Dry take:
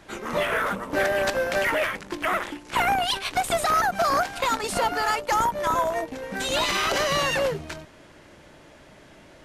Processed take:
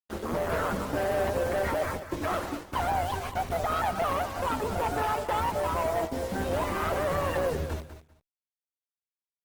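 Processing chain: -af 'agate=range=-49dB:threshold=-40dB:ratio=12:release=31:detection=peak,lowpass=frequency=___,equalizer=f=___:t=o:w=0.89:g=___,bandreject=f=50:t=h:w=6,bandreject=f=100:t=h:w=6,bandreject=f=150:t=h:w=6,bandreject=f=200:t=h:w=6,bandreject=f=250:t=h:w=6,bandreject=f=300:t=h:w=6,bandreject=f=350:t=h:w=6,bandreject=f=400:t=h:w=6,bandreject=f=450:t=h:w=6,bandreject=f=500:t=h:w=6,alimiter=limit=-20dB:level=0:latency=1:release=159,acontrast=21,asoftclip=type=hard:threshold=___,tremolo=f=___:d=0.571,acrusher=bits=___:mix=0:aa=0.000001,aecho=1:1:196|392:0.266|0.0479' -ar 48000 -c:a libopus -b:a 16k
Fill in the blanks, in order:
1000, 78, 14.5, -22.5dB, 170, 6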